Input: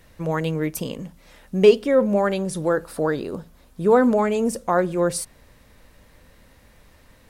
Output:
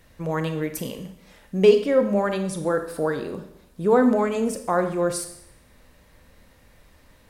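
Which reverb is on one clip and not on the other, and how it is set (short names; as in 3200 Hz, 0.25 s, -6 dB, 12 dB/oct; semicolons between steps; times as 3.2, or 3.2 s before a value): Schroeder reverb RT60 0.72 s, combs from 28 ms, DRR 7.5 dB; gain -2.5 dB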